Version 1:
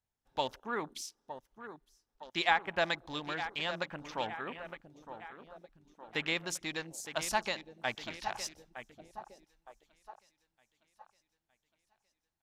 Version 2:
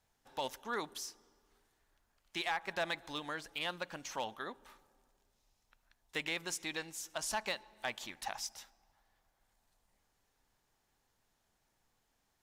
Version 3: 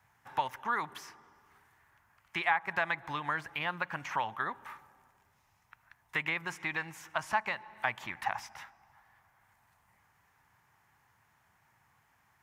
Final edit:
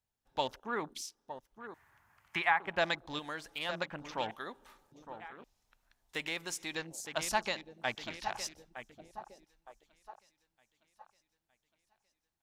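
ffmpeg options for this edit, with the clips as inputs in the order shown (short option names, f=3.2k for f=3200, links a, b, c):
-filter_complex "[1:a]asplit=3[a][b][c];[0:a]asplit=5[d][e][f][g][h];[d]atrim=end=1.742[i];[2:a]atrim=start=1.738:end=2.602[j];[e]atrim=start=2.598:end=3.192[k];[a]atrim=start=3.188:end=3.692[l];[f]atrim=start=3.688:end=4.312[m];[b]atrim=start=4.308:end=4.922[n];[g]atrim=start=4.918:end=5.442[o];[c]atrim=start=5.438:end=6.752[p];[h]atrim=start=6.748[q];[i][j]acrossfade=d=0.004:c1=hsin:c2=hsin[r];[r][k]acrossfade=d=0.004:c1=hsin:c2=hsin[s];[s][l]acrossfade=d=0.004:c1=hsin:c2=hsin[t];[t][m]acrossfade=d=0.004:c1=hsin:c2=hsin[u];[u][n]acrossfade=d=0.004:c1=hsin:c2=hsin[v];[v][o]acrossfade=d=0.004:c1=hsin:c2=hsin[w];[w][p]acrossfade=d=0.004:c1=hsin:c2=hsin[x];[x][q]acrossfade=d=0.004:c1=hsin:c2=hsin"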